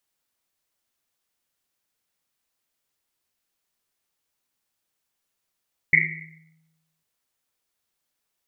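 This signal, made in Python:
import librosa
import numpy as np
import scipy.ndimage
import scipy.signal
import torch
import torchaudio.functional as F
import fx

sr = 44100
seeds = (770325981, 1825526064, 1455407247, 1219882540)

y = fx.risset_drum(sr, seeds[0], length_s=1.1, hz=160.0, decay_s=1.2, noise_hz=2100.0, noise_width_hz=320.0, noise_pct=80)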